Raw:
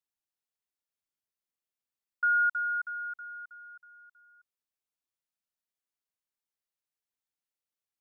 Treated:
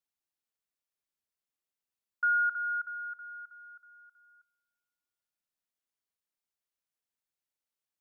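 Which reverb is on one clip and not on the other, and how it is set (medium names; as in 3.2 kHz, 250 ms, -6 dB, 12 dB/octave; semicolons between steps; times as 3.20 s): spring tank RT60 1.9 s, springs 33 ms, chirp 65 ms, DRR 20 dB; trim -1 dB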